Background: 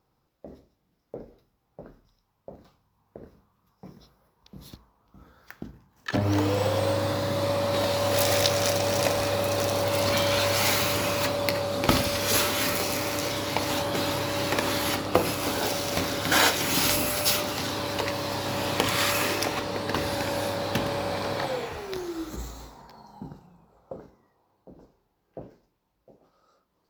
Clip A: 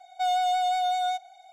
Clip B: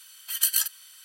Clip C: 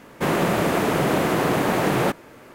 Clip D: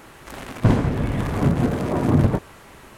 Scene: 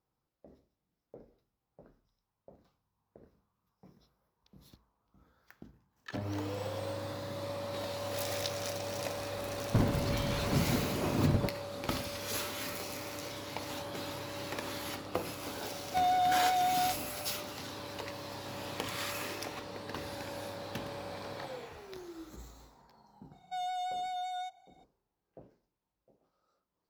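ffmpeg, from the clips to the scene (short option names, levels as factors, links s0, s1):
-filter_complex "[1:a]asplit=2[s0][s1];[0:a]volume=0.224[s2];[s0]lowpass=f=2000:p=1[s3];[4:a]atrim=end=2.97,asetpts=PTS-STARTPTS,volume=0.266,afade=t=in:d=0.004:c=hsin,afade=t=out:st=2.966:d=0.004:c=hsin,adelay=9100[s4];[s3]atrim=end=1.52,asetpts=PTS-STARTPTS,volume=0.708,afade=t=in:d=0.004:c=hsin,afade=t=out:st=1.516:d=0.004:c=hsin,adelay=15750[s5];[s1]atrim=end=1.52,asetpts=PTS-STARTPTS,volume=0.266,afade=t=in:d=0.004:c=hsin,afade=t=out:st=1.516:d=0.004:c=hsin,adelay=23320[s6];[s2][s4][s5][s6]amix=inputs=4:normalize=0"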